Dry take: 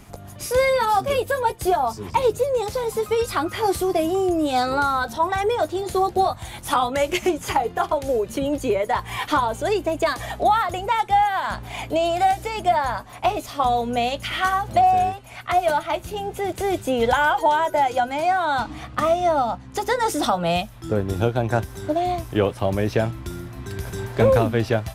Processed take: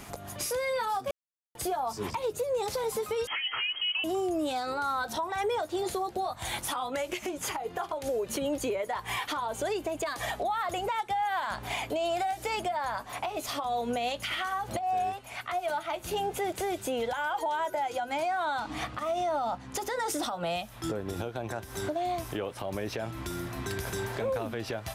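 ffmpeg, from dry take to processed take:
ffmpeg -i in.wav -filter_complex "[0:a]asettb=1/sr,asplit=3[link_01][link_02][link_03];[link_01]atrim=end=3.274[link_04];[link_02]atrim=start=3.27:end=4.04,asetpts=PTS-STARTPTS,afade=type=in:duration=0.004:curve=qsin,afade=type=out:start_time=0.766:duration=0.004:curve=qsin,lowpass=frequency=2800:width_type=q:width=0.5098,lowpass=frequency=2800:width_type=q:width=0.6013,lowpass=frequency=2800:width_type=q:width=0.9,lowpass=frequency=2800:width_type=q:width=2.563,afreqshift=-3300[link_05];[link_03]atrim=start=4.036[link_06];[link_04][link_05]acrossfade=duration=0.004:curve1=hsin:curve2=qsin[link_07];[link_07][link_06]acrossfade=duration=0.004:curve1=qsin:curve2=hsin,asettb=1/sr,asplit=3[link_08][link_09][link_10];[link_08]atrim=end=18.594[link_11];[link_09]atrim=start=18.59:end=20.25,asetpts=PTS-STARTPTS,afade=type=in:duration=0.004:curve=qsin,afade=type=out:start_time=1.656:duration=0.004:curve=qsin,acompressor=threshold=-21dB:ratio=6:attack=3.2:release=140:knee=1:detection=peak[link_12];[link_10]atrim=start=20.246[link_13];[link_11][link_12]acrossfade=duration=0.004:curve1=hsin:curve2=qsin[link_14];[link_14][link_13]acrossfade=duration=0.004:curve1=qsin:curve2=hsin,asplit=5[link_15][link_16][link_17][link_18][link_19];[link_15]atrim=end=1.11,asetpts=PTS-STARTPTS,afade=type=out:start_time=1.106:duration=0.004:curve=hsin[link_20];[link_16]atrim=start=1.11:end=1.55,asetpts=PTS-STARTPTS,volume=0[link_21];[link_17]atrim=start=1.55:end=14.792,asetpts=PTS-STARTPTS,afade=type=in:duration=0.004:curve=hsin[link_22];[link_18]atrim=start=14.788:end=15.892,asetpts=PTS-STARTPTS,volume=-5dB[link_23];[link_19]atrim=start=15.888[link_24];[link_20][link_21][link_22]concat=n=3:v=0:a=1[link_25];[link_25][link_23]acrossfade=duration=0.004:curve1=hsin:curve2=hsin[link_26];[link_26][link_24]acrossfade=duration=0.004:curve1=hsin:curve2=hsin,lowshelf=frequency=220:gain=-10.5,acompressor=threshold=-26dB:ratio=6,alimiter=level_in=3.5dB:limit=-24dB:level=0:latency=1:release=253,volume=-3.5dB,volume=4.5dB" out.wav

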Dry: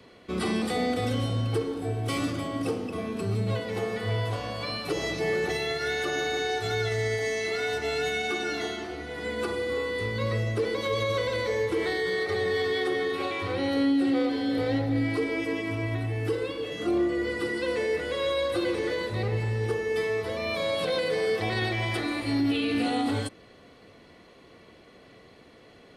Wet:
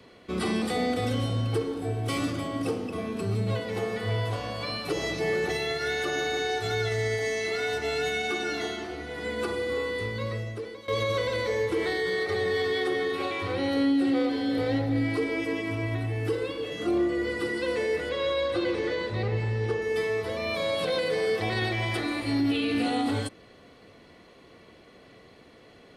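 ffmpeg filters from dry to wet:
ffmpeg -i in.wav -filter_complex "[0:a]asettb=1/sr,asplit=3[link_01][link_02][link_03];[link_01]atrim=end=18.094[link_04];[link_02]atrim=start=18.09:end=19.82,asetpts=PTS-STARTPTS,afade=type=in:duration=0.004:curve=qsin,afade=type=out:start_time=1.726:duration=0.004:curve=qsin,lowpass=5800[link_05];[link_03]atrim=start=19.816[link_06];[link_04][link_05]acrossfade=duration=0.004:curve1=hsin:curve2=qsin[link_07];[link_07][link_06]acrossfade=duration=0.004:curve1=qsin:curve2=hsin,asplit=2[link_08][link_09];[link_08]atrim=end=10.88,asetpts=PTS-STARTPTS,afade=type=out:start_time=9.88:duration=1:silence=0.125893[link_10];[link_09]atrim=start=10.88,asetpts=PTS-STARTPTS,afade=type=in:duration=0.004:curve=hsin:silence=0.125893[link_11];[link_10][link_11]concat=n=2:v=0:a=1" out.wav

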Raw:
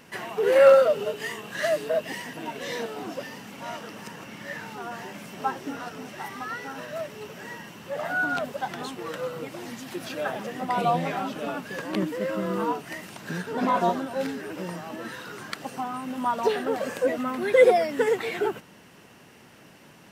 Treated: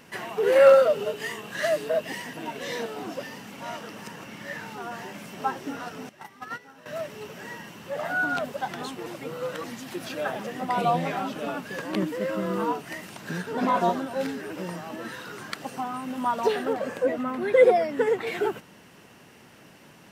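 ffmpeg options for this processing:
ffmpeg -i in.wav -filter_complex "[0:a]asettb=1/sr,asplit=3[link_01][link_02][link_03];[link_01]atrim=end=6.094[link_04];[link_02]atrim=start=6.09:end=6.86,asetpts=PTS-STARTPTS,afade=type=in:duration=0.004:curve=qsin,afade=type=out:start_time=0.766:duration=0.004:curve=qsin,agate=range=-14dB:threshold=-34dB:ratio=16:release=100:detection=peak[link_05];[link_03]atrim=start=6.856[link_06];[link_04][link_05]acrossfade=duration=0.004:curve1=hsin:curve2=qsin[link_07];[link_07][link_06]acrossfade=duration=0.004:curve1=qsin:curve2=hsin,asettb=1/sr,asplit=3[link_08][link_09][link_10];[link_08]atrim=end=16.734[link_11];[link_09]atrim=start=16.73:end=18.27,asetpts=PTS-STARTPTS,afade=type=in:duration=0.004:curve=qsin,afade=type=out:start_time=1.536:duration=0.004:curve=qsin,highshelf=frequency=2900:gain=-8.5[link_12];[link_10]atrim=start=18.266[link_13];[link_11][link_12]acrossfade=duration=0.004:curve1=hsin:curve2=qsin[link_14];[link_14][link_13]acrossfade=duration=0.004:curve1=qsin:curve2=hsin,asplit=3[link_15][link_16][link_17];[link_15]atrim=end=9.062[link_18];[link_16]atrim=start=9.058:end=9.642,asetpts=PTS-STARTPTS,areverse[link_19];[link_17]atrim=start=9.638[link_20];[link_18][link_19]acrossfade=duration=0.004:curve1=hsin:curve2=hsin[link_21];[link_21][link_20]acrossfade=duration=0.004:curve1=hsin:curve2=hsin" out.wav

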